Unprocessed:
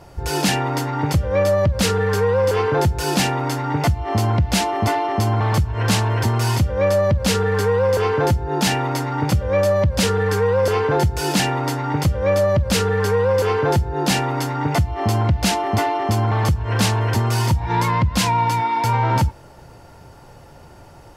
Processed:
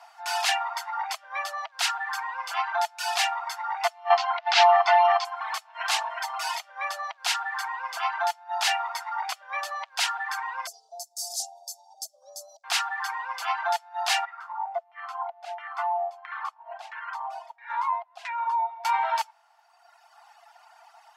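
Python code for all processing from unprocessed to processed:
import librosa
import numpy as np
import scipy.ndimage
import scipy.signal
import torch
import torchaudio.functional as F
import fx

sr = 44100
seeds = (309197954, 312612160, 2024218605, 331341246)

y = fx.chain(x, sr, fx.lowpass(hz=5200.0, slope=24),
    fx.env_flatten(amount_pct=100), at=(4.1, 5.25))
y = fx.chain(y, sr, fx.cheby2_bandstop(low_hz=1100.0, high_hz=2600.0, order=4, stop_db=60),
    fx.env_flatten(amount_pct=50), at=(10.67, 12.64))
y = fx.chain(y, sr, fx.high_shelf(hz=7700.0, db=11.5),
    fx.filter_lfo_bandpass(shape='saw_down', hz=1.5, low_hz=410.0, high_hz=2000.0, q=2.9), at=(14.25, 18.85))
y = fx.dereverb_blind(y, sr, rt60_s=1.6)
y = scipy.signal.sosfilt(scipy.signal.cheby1(8, 1.0, 670.0, 'highpass', fs=sr, output='sos'), y)
y = fx.high_shelf(y, sr, hz=7100.0, db=-10.0)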